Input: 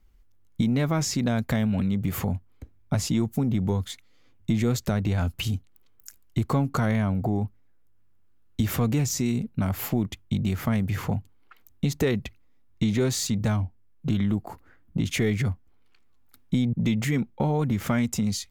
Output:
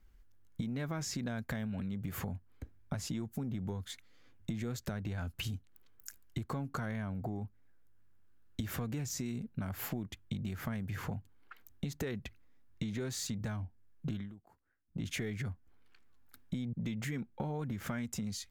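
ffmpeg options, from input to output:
-filter_complex "[0:a]asplit=3[s0][s1][s2];[s0]atrim=end=14.37,asetpts=PTS-STARTPTS,afade=t=out:st=14.16:d=0.21:c=qua:silence=0.0668344[s3];[s1]atrim=start=14.37:end=14.84,asetpts=PTS-STARTPTS,volume=0.0668[s4];[s2]atrim=start=14.84,asetpts=PTS-STARTPTS,afade=t=in:d=0.21:c=qua:silence=0.0668344[s5];[s3][s4][s5]concat=n=3:v=0:a=1,equalizer=f=1600:w=4.2:g=6.5,acompressor=threshold=0.0224:ratio=5,volume=0.708"

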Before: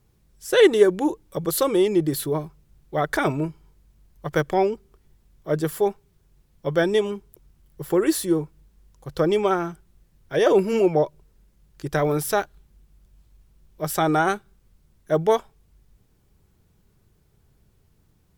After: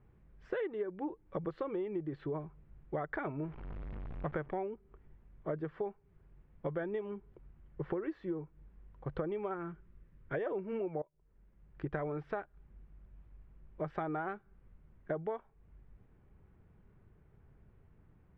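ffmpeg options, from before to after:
-filter_complex "[0:a]asettb=1/sr,asplit=3[s0][s1][s2];[s0]atrim=end=3.424[s3];[s1]atrim=start=3.42:end=4.53,asetpts=PTS-STARTPTS,afade=t=in:d=0.004:c=qsin,afade=t=out:st=1.106:d=0.004:c=qsin,aeval=exprs='val(0)+0.5*0.0158*sgn(val(0))':c=same[s4];[s2]atrim=start=4.526[s5];[s3][s4]acrossfade=d=0.004:c1=hsin:c2=qsin[s6];[s6][s5]acrossfade=d=0.004:c1=qsin:c2=hsin,asettb=1/sr,asplit=3[s7][s8][s9];[s7]atrim=end=9.544[s10];[s8]atrim=start=9.54:end=10.35,asetpts=PTS-STARTPTS,afade=t=in:d=0.004:c=qsin,afade=t=out:st=0.806:d=0.004:c=qsin,equalizer=f=750:w=3.5:g=-10[s11];[s9]atrim=start=10.346[s12];[s10][s11]acrossfade=d=0.004:c1=hsin:c2=qsin[s13];[s13][s12]acrossfade=d=0.004:c1=qsin:c2=hsin,asplit=2[s14][s15];[s14]atrim=end=11.02,asetpts=PTS-STARTPTS,afade=t=out:st=11.016:d=0.004:c=hsin:silence=0.0749894[s16];[s15]atrim=start=11.02,asetpts=PTS-STARTPTS,afade=t=in:d=0.83:silence=0.0749894[s17];[s16][s17]concat=n=2:v=0:a=1,acompressor=threshold=0.0224:ratio=12,lowpass=f=2200:w=0.5412,lowpass=f=2200:w=1.3066,volume=0.891"

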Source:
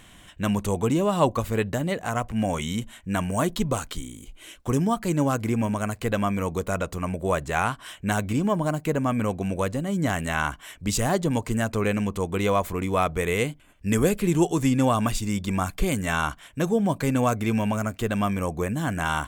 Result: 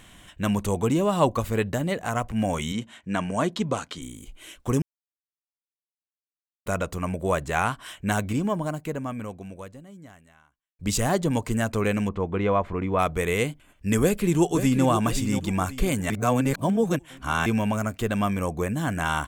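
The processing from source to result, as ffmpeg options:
-filter_complex "[0:a]asettb=1/sr,asplit=3[s0][s1][s2];[s0]atrim=end=2.724[s3];[s1]atrim=start=2.72:end=4.02,asetpts=PTS-STARTPTS,afade=t=in:d=0.004:c=qsin,afade=t=out:st=1.296:d=0.004:c=qsin,highpass=140,lowpass=6300[s4];[s2]atrim=start=4.016[s5];[s3][s4]acrossfade=d=0.004:c1=hsin:c2=qsin[s6];[s6][s5]acrossfade=d=0.004:c1=qsin:c2=hsin,asplit=3[s7][s8][s9];[s7]afade=t=out:st=12.08:d=0.02[s10];[s8]lowpass=2100,afade=t=in:st=12.08:d=0.02,afade=t=out:st=12.98:d=0.02[s11];[s9]afade=t=in:st=12.98:d=0.02[s12];[s10][s11][s12]amix=inputs=3:normalize=0,asplit=2[s13][s14];[s14]afade=t=in:st=14.01:d=0.01,afade=t=out:st=14.86:d=0.01,aecho=0:1:530|1060|1590|2120:0.354813|0.124185|0.0434646|0.0152126[s15];[s13][s15]amix=inputs=2:normalize=0,asplit=6[s16][s17][s18][s19][s20][s21];[s16]atrim=end=4.82,asetpts=PTS-STARTPTS,afade=t=out:st=4.816:d=0.004:c=hsin[s22];[s17]atrim=start=4.82:end=6.66,asetpts=PTS-STARTPTS,volume=0[s23];[s18]atrim=start=6.66:end=10.79,asetpts=PTS-STARTPTS,afade=t=in:d=0.004:c=hsin,afade=t=out:st=1.51:d=2.62:c=qua[s24];[s19]atrim=start=10.79:end=16.102,asetpts=PTS-STARTPTS,afade=t=in:d=0.004:c=hsin[s25];[s20]atrim=start=16.098:end=17.462,asetpts=PTS-STARTPTS,areverse[s26];[s21]atrim=start=17.458[s27];[s22][s23][s24][s25]concat=n=4:v=0:a=1[s28];[s28][s26]acrossfade=d=0.004:c1=hsin:c2=hsin[s29];[s29][s27]acrossfade=d=0.004:c1=hsin:c2=hsin"

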